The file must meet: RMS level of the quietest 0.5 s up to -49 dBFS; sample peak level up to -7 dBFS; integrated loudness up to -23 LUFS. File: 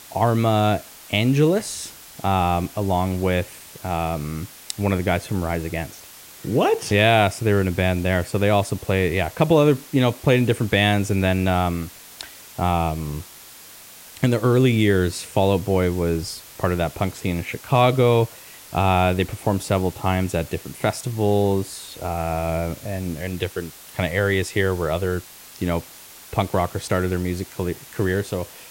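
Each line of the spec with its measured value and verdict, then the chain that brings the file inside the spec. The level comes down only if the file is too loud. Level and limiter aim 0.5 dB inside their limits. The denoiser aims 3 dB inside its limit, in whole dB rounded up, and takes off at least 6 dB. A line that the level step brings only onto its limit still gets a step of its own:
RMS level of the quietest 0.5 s -43 dBFS: fail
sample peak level -4.5 dBFS: fail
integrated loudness -22.0 LUFS: fail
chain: denoiser 8 dB, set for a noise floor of -43 dBFS; gain -1.5 dB; limiter -7.5 dBFS

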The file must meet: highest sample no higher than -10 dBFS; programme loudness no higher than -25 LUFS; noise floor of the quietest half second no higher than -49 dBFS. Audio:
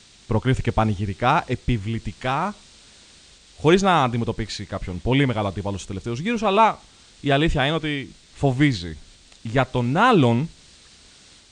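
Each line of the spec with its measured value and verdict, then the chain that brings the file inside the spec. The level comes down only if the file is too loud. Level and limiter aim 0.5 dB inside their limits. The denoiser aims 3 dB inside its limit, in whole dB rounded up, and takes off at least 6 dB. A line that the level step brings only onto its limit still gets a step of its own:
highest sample -2.5 dBFS: fail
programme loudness -22.0 LUFS: fail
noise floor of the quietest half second -50 dBFS: OK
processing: gain -3.5 dB; limiter -10.5 dBFS

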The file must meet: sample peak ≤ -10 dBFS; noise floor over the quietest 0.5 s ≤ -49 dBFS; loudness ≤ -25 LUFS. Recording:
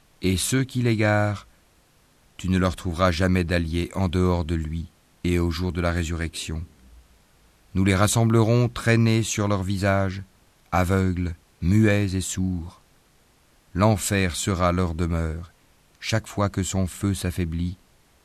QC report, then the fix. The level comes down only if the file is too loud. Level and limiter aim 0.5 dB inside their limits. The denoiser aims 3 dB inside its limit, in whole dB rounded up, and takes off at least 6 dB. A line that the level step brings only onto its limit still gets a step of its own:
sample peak -5.5 dBFS: fail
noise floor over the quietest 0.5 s -59 dBFS: OK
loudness -23.5 LUFS: fail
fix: gain -2 dB; limiter -10.5 dBFS

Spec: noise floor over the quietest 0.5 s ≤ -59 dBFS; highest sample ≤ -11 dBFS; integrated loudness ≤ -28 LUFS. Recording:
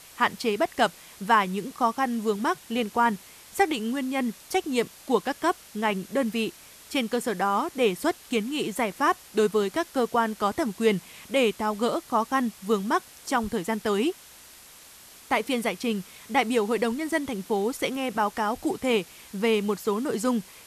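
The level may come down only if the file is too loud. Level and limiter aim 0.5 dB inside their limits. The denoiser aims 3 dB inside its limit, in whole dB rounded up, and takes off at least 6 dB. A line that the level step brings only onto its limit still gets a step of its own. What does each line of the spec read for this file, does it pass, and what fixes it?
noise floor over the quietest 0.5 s -49 dBFS: fail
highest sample -8.5 dBFS: fail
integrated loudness -26.5 LUFS: fail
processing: denoiser 11 dB, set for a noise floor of -49 dBFS; gain -2 dB; limiter -11.5 dBFS

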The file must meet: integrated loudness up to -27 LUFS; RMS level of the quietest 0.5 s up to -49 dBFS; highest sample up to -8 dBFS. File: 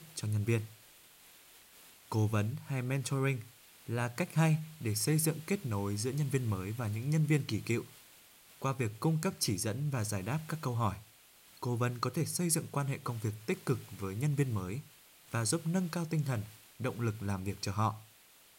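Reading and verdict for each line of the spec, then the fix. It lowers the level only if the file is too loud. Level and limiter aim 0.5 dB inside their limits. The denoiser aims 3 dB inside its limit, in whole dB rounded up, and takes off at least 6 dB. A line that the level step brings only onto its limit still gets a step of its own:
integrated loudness -34.5 LUFS: OK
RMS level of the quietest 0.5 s -61 dBFS: OK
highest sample -16.5 dBFS: OK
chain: none

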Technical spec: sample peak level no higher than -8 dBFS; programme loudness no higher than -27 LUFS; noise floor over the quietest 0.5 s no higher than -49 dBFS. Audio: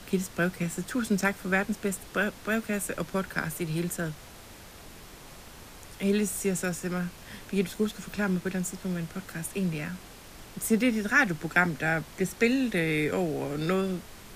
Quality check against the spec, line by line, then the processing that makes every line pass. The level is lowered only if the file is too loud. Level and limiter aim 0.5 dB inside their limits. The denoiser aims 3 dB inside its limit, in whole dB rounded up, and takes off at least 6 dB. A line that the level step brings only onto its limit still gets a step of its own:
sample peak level -9.0 dBFS: OK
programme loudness -29.0 LUFS: OK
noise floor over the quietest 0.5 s -48 dBFS: fail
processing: denoiser 6 dB, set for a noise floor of -48 dBFS

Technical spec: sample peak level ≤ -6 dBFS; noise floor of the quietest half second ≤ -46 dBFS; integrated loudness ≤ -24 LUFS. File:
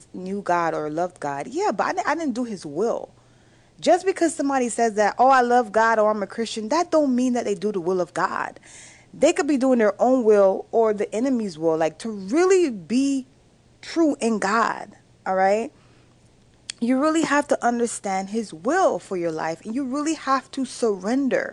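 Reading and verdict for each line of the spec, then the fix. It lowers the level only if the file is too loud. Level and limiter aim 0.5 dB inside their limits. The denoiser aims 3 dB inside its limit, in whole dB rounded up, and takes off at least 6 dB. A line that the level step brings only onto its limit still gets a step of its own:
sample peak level -7.0 dBFS: OK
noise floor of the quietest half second -56 dBFS: OK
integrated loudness -22.0 LUFS: fail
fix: gain -2.5 dB

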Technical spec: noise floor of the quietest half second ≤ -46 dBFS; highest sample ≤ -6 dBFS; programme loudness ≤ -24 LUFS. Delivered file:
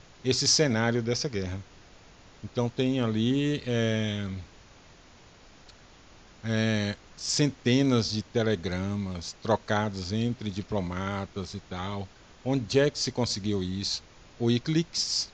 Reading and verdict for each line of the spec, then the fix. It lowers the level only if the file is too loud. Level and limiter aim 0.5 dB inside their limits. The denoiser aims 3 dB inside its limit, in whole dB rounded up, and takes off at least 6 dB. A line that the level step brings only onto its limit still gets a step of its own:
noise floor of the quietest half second -54 dBFS: OK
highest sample -9.0 dBFS: OK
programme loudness -28.0 LUFS: OK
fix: none

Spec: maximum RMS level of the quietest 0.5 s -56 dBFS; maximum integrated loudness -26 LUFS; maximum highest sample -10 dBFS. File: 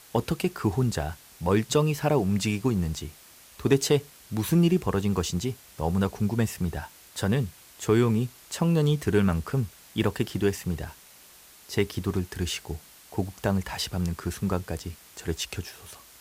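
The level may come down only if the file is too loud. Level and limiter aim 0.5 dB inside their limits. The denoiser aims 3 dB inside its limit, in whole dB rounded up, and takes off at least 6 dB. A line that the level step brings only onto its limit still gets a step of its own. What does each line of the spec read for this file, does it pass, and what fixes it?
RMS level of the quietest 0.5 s -52 dBFS: fail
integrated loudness -27.5 LUFS: OK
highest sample -9.0 dBFS: fail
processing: denoiser 7 dB, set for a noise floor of -52 dBFS; limiter -10.5 dBFS

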